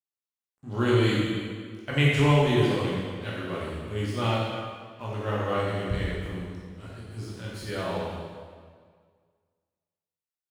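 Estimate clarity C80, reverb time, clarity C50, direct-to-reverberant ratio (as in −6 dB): 0.5 dB, 1.9 s, −1.5 dB, −6.5 dB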